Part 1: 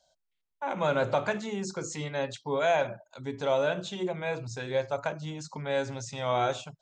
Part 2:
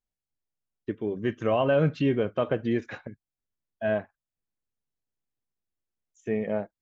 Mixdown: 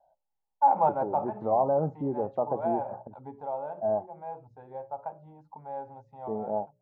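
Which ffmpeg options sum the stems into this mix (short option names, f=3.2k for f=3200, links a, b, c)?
-filter_complex "[0:a]bandreject=f=60:t=h:w=6,bandreject=f=120:t=h:w=6,bandreject=f=180:t=h:w=6,bandreject=f=240:t=h:w=6,bandreject=f=300:t=h:w=6,bandreject=f=360:t=h:w=6,bandreject=f=420:t=h:w=6,bandreject=f=480:t=h:w=6,bandreject=f=540:t=h:w=6,bandreject=f=600:t=h:w=6,volume=-3.5dB,afade=t=out:st=2.99:d=0.49:silence=0.266073[a];[1:a]lowpass=f=1.2k:w=0.5412,lowpass=f=1.2k:w=1.3066,bandreject=f=60:t=h:w=6,bandreject=f=120:t=h:w=6,volume=-8dB,asplit=2[b][c];[c]apad=whole_len=300680[d];[a][d]sidechaincompress=threshold=-41dB:ratio=8:attack=7.3:release=224[e];[e][b]amix=inputs=2:normalize=0,lowpass=f=830:t=q:w=9.1"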